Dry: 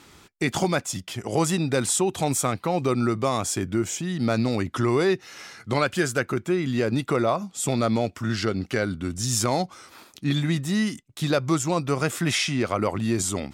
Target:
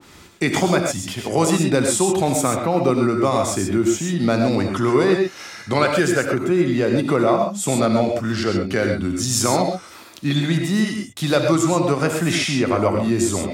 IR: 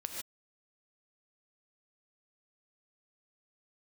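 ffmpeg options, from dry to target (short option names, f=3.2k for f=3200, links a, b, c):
-filter_complex "[0:a]acrossover=split=130[a][b];[a]asoftclip=type=tanh:threshold=-37dB[c];[c][b]amix=inputs=2:normalize=0[d];[1:a]atrim=start_sample=2205,atrim=end_sample=6174[e];[d][e]afir=irnorm=-1:irlink=0,adynamicequalizer=threshold=0.0126:dfrequency=1500:dqfactor=0.7:tfrequency=1500:tqfactor=0.7:attack=5:release=100:ratio=0.375:range=2:mode=cutabove:tftype=highshelf,volume=7dB"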